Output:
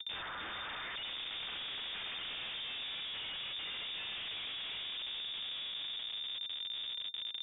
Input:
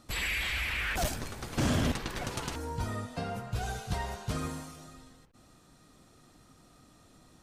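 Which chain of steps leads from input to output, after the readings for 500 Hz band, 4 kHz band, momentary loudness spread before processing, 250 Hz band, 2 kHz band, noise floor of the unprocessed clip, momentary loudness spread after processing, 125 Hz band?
−16.5 dB, +6.0 dB, 9 LU, −23.5 dB, −7.0 dB, −60 dBFS, 2 LU, −28.0 dB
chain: variable-slope delta modulation 64 kbit/s
low-shelf EQ 460 Hz −5.5 dB
brickwall limiter −32 dBFS, peak gain reduction 10.5 dB
downward compressor 2.5 to 1, threshold −48 dBFS, peak gain reduction 8 dB
high-frequency loss of the air 160 metres
on a send: feedback delay with all-pass diffusion 1,142 ms, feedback 51%, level −8 dB
on the sum: comparator with hysteresis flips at −53.5 dBFS
voice inversion scrambler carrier 3,600 Hz
level +8.5 dB

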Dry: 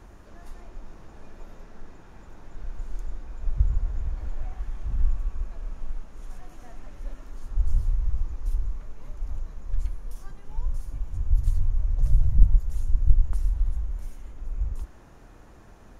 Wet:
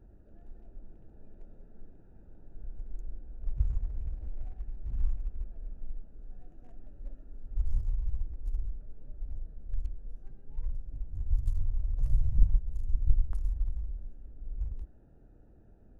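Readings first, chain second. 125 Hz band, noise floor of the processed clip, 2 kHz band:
−6.5 dB, −56 dBFS, can't be measured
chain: adaptive Wiener filter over 41 samples
hum removal 176.4 Hz, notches 14
level −6.5 dB

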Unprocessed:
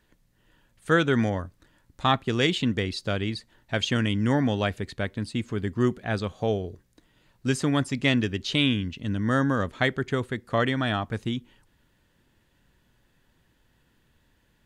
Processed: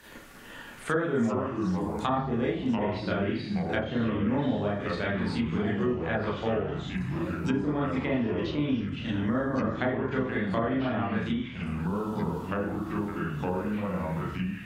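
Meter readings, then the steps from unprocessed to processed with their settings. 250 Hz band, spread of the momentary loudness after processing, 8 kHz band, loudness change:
0.0 dB, 4 LU, below −10 dB, −3.0 dB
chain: spectral tilt +2 dB per octave
four-comb reverb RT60 0.43 s, combs from 27 ms, DRR −7.5 dB
treble cut that deepens with the level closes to 870 Hz, closed at −16 dBFS
delay with pitch and tempo change per echo 155 ms, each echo −4 semitones, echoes 3, each echo −6 dB
multiband upward and downward compressor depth 70%
level −7.5 dB

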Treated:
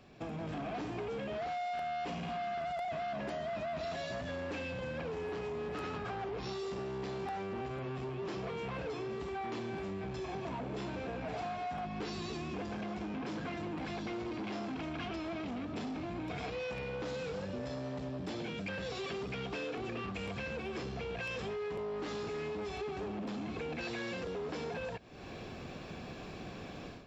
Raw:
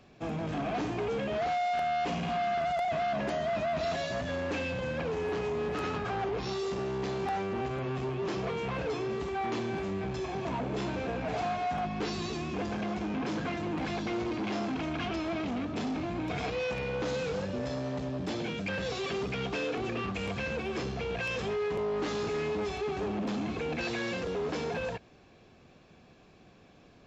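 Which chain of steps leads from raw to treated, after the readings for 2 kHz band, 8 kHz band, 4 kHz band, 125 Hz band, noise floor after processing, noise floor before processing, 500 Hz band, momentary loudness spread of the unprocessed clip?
−6.0 dB, can't be measured, −6.0 dB, −6.0 dB, −46 dBFS, −58 dBFS, −6.5 dB, 4 LU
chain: automatic gain control gain up to 14.5 dB
notch filter 6,400 Hz, Q 15
downward compressor 6 to 1, threshold −38 dBFS, peak gain reduction 20.5 dB
level −1.5 dB

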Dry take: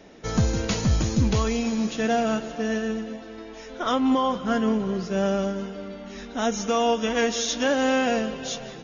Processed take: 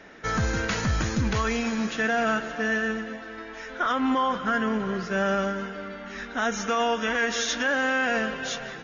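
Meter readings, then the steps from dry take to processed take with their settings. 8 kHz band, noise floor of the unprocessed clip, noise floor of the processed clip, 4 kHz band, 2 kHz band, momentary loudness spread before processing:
can't be measured, −41 dBFS, −40 dBFS, −1.5 dB, +6.5 dB, 13 LU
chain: parametric band 1,600 Hz +14 dB 1.2 octaves
brickwall limiter −13 dBFS, peak gain reduction 8 dB
level −3 dB

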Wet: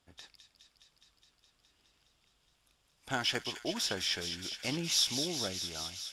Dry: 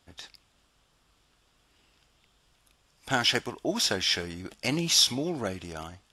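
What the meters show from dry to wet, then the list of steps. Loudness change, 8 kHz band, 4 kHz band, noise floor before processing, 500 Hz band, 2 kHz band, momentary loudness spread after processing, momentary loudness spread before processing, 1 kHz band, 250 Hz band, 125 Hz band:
−6.5 dB, −5.5 dB, −6.0 dB, −68 dBFS, −7.5 dB, −7.0 dB, 9 LU, 18 LU, −7.5 dB, −7.5 dB, −7.5 dB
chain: delay with a high-pass on its return 208 ms, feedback 82%, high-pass 2,500 Hz, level −7 dB
harmonic generator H 8 −37 dB, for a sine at −10.5 dBFS
level −7.5 dB

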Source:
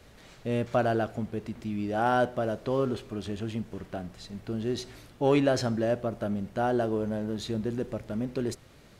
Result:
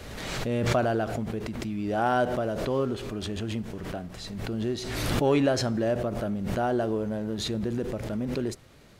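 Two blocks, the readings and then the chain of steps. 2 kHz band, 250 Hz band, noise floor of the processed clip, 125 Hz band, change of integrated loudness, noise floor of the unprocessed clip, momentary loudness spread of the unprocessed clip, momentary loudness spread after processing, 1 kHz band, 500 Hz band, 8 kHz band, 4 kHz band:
+2.0 dB, +1.5 dB, −45 dBFS, +2.5 dB, +1.0 dB, −54 dBFS, 12 LU, 10 LU, +1.0 dB, +1.0 dB, +6.0 dB, +5.5 dB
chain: background raised ahead of every attack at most 31 dB per second

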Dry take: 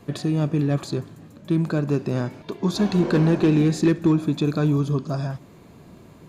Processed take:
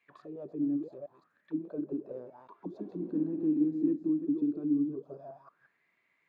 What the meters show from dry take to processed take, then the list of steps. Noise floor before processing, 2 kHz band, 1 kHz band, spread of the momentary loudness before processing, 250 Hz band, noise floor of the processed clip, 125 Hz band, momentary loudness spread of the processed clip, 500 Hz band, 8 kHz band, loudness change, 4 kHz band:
−48 dBFS, below −30 dB, below −20 dB, 12 LU, −9.0 dB, −76 dBFS, −26.0 dB, 19 LU, −14.5 dB, below −40 dB, −10.5 dB, below −35 dB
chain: delay that plays each chunk backwards 177 ms, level −6 dB
envelope filter 290–2,300 Hz, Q 9.6, down, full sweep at −16.5 dBFS
level −4 dB

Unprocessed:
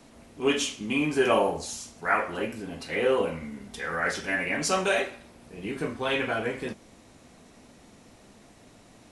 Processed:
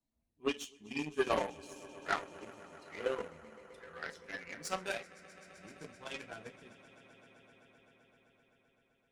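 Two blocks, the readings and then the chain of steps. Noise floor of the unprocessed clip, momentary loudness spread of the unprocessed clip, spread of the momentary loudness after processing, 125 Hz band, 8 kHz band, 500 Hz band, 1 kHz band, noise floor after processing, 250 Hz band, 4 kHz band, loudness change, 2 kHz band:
−54 dBFS, 13 LU, 20 LU, −15.0 dB, −15.0 dB, −12.5 dB, −11.5 dB, −77 dBFS, −14.0 dB, −12.5 dB, −12.0 dB, −13.5 dB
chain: spectral dynamics exaggerated over time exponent 1.5
echo that builds up and dies away 129 ms, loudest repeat 5, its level −15.5 dB
harmonic generator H 7 −19 dB, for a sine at −10 dBFS
level −6.5 dB

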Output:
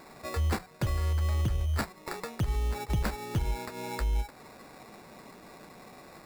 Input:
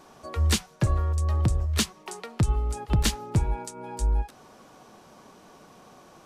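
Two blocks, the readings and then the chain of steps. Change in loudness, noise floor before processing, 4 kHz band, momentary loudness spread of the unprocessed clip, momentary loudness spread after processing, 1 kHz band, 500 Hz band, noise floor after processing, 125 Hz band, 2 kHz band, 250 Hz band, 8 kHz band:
−5.0 dB, −53 dBFS, −10.0 dB, 11 LU, 20 LU, −2.5 dB, −2.0 dB, −52 dBFS, −5.0 dB, −2.0 dB, −5.5 dB, −12.0 dB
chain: in parallel at 0 dB: downward compressor, threshold −33 dBFS, peak gain reduction 14 dB
on the sum: brickwall limiter −17.5 dBFS, peak gain reduction 6 dB
sample-rate reduction 3,100 Hz, jitter 0%
level −4.5 dB

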